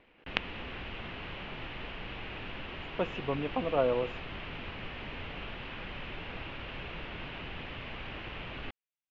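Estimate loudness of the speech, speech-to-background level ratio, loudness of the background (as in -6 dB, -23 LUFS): -33.5 LUFS, 8.0 dB, -41.5 LUFS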